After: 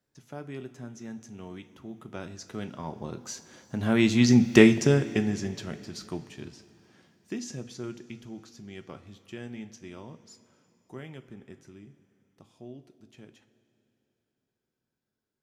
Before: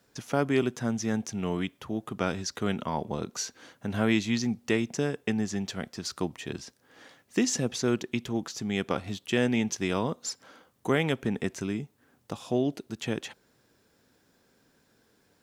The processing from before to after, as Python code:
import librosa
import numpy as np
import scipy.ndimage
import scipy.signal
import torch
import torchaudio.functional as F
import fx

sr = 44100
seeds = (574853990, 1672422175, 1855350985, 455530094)

y = fx.doppler_pass(x, sr, speed_mps=10, closest_m=2.4, pass_at_s=4.54)
y = fx.low_shelf(y, sr, hz=270.0, db=6.0)
y = fx.rev_double_slope(y, sr, seeds[0], early_s=0.26, late_s=3.2, knee_db=-17, drr_db=7.5)
y = F.gain(torch.from_numpy(y), 8.5).numpy()